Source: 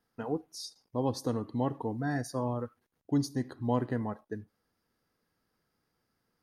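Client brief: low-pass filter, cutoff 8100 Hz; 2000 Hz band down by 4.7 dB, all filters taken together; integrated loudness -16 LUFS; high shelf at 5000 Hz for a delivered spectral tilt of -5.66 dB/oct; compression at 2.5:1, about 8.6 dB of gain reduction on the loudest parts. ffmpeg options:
-af "lowpass=8.1k,equalizer=f=2k:t=o:g=-7,highshelf=f=5k:g=8,acompressor=threshold=-36dB:ratio=2.5,volume=24dB"

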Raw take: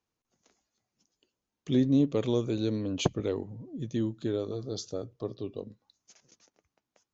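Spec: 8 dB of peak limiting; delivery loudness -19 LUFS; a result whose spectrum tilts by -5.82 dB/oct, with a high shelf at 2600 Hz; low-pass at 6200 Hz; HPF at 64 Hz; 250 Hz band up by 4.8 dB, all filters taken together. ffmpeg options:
-af "highpass=64,lowpass=6.2k,equalizer=f=250:t=o:g=5.5,highshelf=f=2.6k:g=8.5,volume=10.5dB,alimiter=limit=-6.5dB:level=0:latency=1"

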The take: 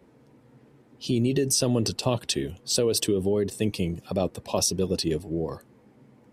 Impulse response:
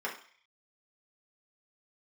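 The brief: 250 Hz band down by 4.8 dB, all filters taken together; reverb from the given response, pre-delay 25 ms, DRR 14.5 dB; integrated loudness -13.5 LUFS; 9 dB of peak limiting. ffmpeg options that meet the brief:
-filter_complex "[0:a]equalizer=f=250:t=o:g=-6.5,alimiter=limit=-19.5dB:level=0:latency=1,asplit=2[a][b];[1:a]atrim=start_sample=2205,adelay=25[c];[b][c]afir=irnorm=-1:irlink=0,volume=-20dB[d];[a][d]amix=inputs=2:normalize=0,volume=17dB"

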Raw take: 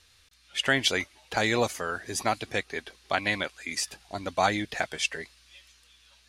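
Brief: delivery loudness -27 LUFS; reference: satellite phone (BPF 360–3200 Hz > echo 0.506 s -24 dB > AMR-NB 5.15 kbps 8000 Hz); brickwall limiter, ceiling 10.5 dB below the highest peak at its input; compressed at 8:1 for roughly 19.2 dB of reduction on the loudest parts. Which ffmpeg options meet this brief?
-af "acompressor=threshold=-40dB:ratio=8,alimiter=level_in=9dB:limit=-24dB:level=0:latency=1,volume=-9dB,highpass=360,lowpass=3.2k,aecho=1:1:506:0.0631,volume=25dB" -ar 8000 -c:a libopencore_amrnb -b:a 5150

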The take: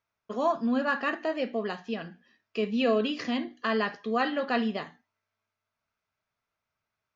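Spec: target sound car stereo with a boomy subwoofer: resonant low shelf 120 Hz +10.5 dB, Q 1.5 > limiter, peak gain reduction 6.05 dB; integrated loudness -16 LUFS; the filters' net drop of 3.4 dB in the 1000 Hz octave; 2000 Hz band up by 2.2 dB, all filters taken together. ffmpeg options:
-af "lowshelf=f=120:t=q:w=1.5:g=10.5,equalizer=f=1k:t=o:g=-5.5,equalizer=f=2k:t=o:g=4.5,volume=16dB,alimiter=limit=-5dB:level=0:latency=1"

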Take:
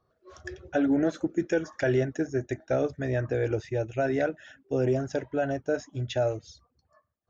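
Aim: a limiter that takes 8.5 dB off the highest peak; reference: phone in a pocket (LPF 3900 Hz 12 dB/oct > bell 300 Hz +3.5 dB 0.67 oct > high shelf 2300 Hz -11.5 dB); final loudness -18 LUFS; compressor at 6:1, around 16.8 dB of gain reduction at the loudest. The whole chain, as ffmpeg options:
-af "acompressor=threshold=-40dB:ratio=6,alimiter=level_in=11dB:limit=-24dB:level=0:latency=1,volume=-11dB,lowpass=3.9k,equalizer=f=300:t=o:w=0.67:g=3.5,highshelf=f=2.3k:g=-11.5,volume=26.5dB"

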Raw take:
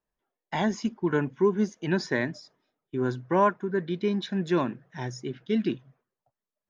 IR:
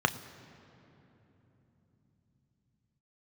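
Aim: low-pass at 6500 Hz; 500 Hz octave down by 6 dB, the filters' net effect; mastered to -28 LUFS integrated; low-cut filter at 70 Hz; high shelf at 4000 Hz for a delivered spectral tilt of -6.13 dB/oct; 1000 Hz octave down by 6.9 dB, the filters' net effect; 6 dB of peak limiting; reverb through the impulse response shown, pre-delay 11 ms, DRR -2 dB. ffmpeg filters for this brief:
-filter_complex "[0:a]highpass=70,lowpass=6.5k,equalizer=f=500:t=o:g=-7.5,equalizer=f=1k:t=o:g=-5.5,highshelf=f=4k:g=-4.5,alimiter=limit=-21dB:level=0:latency=1,asplit=2[a][b];[1:a]atrim=start_sample=2205,adelay=11[c];[b][c]afir=irnorm=-1:irlink=0,volume=-9.5dB[d];[a][d]amix=inputs=2:normalize=0"

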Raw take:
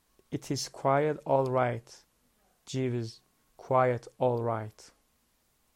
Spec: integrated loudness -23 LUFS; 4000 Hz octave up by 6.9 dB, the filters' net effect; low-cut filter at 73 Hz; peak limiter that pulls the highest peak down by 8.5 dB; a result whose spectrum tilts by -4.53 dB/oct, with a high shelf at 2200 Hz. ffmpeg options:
-af "highpass=73,highshelf=f=2.2k:g=4.5,equalizer=f=4k:t=o:g=4.5,volume=9.5dB,alimiter=limit=-10dB:level=0:latency=1"

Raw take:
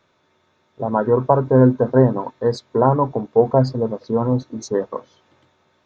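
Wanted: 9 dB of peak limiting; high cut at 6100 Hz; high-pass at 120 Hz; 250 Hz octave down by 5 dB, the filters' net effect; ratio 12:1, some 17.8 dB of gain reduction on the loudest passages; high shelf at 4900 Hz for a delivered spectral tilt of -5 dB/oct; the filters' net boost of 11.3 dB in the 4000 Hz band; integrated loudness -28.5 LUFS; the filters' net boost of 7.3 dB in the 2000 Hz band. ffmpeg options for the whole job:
-af "highpass=120,lowpass=6.1k,equalizer=f=250:t=o:g=-5.5,equalizer=f=2k:t=o:g=8,equalizer=f=4k:t=o:g=8.5,highshelf=f=4.9k:g=8.5,acompressor=threshold=-28dB:ratio=12,volume=8dB,alimiter=limit=-17dB:level=0:latency=1"

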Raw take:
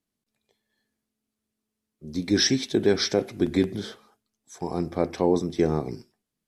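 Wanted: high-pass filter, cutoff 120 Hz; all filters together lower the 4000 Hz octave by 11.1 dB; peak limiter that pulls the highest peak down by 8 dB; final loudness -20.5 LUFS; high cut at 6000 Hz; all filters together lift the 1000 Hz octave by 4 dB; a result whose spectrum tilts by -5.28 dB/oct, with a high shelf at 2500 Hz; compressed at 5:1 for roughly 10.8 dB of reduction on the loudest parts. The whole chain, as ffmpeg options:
-af "highpass=120,lowpass=6k,equalizer=f=1k:t=o:g=6.5,highshelf=f=2.5k:g=-5,equalizer=f=4k:t=o:g=-8.5,acompressor=threshold=-28dB:ratio=5,volume=16dB,alimiter=limit=-7dB:level=0:latency=1"

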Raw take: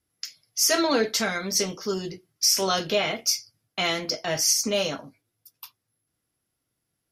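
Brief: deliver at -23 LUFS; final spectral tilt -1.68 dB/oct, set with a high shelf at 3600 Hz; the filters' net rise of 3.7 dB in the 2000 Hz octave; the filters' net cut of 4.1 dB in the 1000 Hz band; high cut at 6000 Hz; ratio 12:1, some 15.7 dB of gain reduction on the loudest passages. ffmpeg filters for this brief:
-af "lowpass=6k,equalizer=f=1k:t=o:g=-8.5,equalizer=f=2k:t=o:g=5.5,highshelf=f=3.6k:g=4.5,acompressor=threshold=-33dB:ratio=12,volume=13.5dB"

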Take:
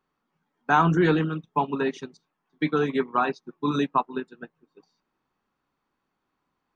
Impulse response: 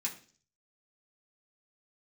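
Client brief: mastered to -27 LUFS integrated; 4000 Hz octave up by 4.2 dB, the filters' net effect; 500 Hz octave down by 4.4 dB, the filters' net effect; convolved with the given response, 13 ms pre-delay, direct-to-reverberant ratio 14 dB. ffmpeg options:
-filter_complex "[0:a]equalizer=f=500:t=o:g=-6,equalizer=f=4k:t=o:g=5,asplit=2[a][b];[1:a]atrim=start_sample=2205,adelay=13[c];[b][c]afir=irnorm=-1:irlink=0,volume=-15.5dB[d];[a][d]amix=inputs=2:normalize=0,volume=-0.5dB"

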